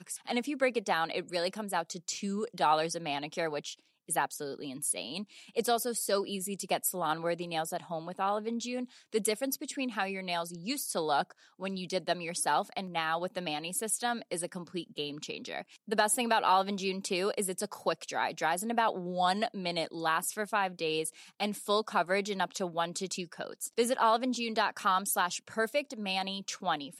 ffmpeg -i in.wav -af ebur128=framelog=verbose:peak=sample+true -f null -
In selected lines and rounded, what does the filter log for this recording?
Integrated loudness:
  I:         -32.3 LUFS
  Threshold: -42.3 LUFS
Loudness range:
  LRA:         3.2 LU
  Threshold: -52.3 LUFS
  LRA low:   -33.9 LUFS
  LRA high:  -30.7 LUFS
Sample peak:
  Peak:      -14.1 dBFS
True peak:
  Peak:      -14.0 dBFS